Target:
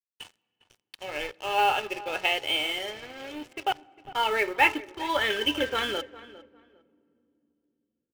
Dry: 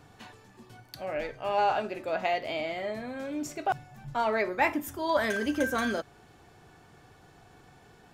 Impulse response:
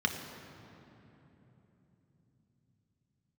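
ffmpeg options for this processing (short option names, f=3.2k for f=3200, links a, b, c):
-filter_complex "[0:a]lowpass=f=3k:t=q:w=8.1,aecho=1:1:2.3:0.64,aeval=exprs='sgn(val(0))*max(abs(val(0))-0.0119,0)':c=same,acrusher=bits=6:mode=log:mix=0:aa=0.000001,asplit=2[a][b];[b]adelay=404,lowpass=f=2.1k:p=1,volume=-17dB,asplit=2[c][d];[d]adelay=404,lowpass=f=2.1k:p=1,volume=0.23[e];[a][c][e]amix=inputs=3:normalize=0,asplit=2[f][g];[1:a]atrim=start_sample=2205,asetrate=57330,aresample=44100[h];[g][h]afir=irnorm=-1:irlink=0,volume=-25.5dB[i];[f][i]amix=inputs=2:normalize=0"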